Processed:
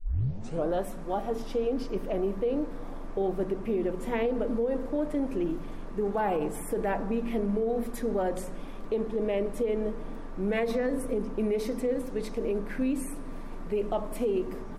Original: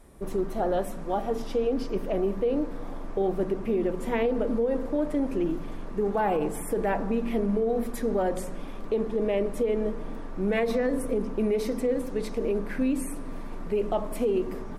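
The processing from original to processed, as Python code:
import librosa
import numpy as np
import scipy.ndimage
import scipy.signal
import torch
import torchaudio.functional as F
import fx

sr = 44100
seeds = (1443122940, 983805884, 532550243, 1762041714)

y = fx.tape_start_head(x, sr, length_s=0.74)
y = y * 10.0 ** (-2.5 / 20.0)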